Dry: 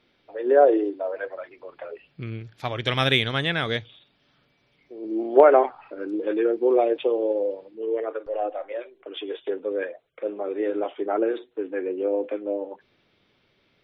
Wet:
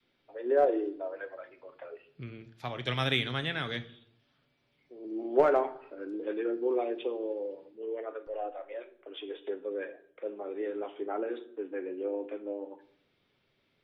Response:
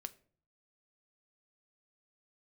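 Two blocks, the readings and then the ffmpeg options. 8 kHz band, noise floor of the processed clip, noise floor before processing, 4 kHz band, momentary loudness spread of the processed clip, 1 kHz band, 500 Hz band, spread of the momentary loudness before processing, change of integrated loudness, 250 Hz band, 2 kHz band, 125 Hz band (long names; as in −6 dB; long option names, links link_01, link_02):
can't be measured, −74 dBFS, −67 dBFS, −8.0 dB, 20 LU, −9.0 dB, −9.5 dB, 18 LU, −9.0 dB, −8.5 dB, −8.0 dB, −7.0 dB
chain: -filter_complex "[0:a]adynamicequalizer=threshold=0.02:dfrequency=610:dqfactor=1.9:tfrequency=610:tqfactor=1.9:attack=5:release=100:ratio=0.375:range=3:mode=cutabove:tftype=bell,acrossover=split=120|630|1900[link_01][link_02][link_03][link_04];[link_03]aeval=exprs='clip(val(0),-1,0.133)':channel_layout=same[link_05];[link_01][link_02][link_05][link_04]amix=inputs=4:normalize=0[link_06];[1:a]atrim=start_sample=2205,afade=type=out:start_time=0.34:duration=0.01,atrim=end_sample=15435,asetrate=27342,aresample=44100[link_07];[link_06][link_07]afir=irnorm=-1:irlink=0,volume=-6.5dB"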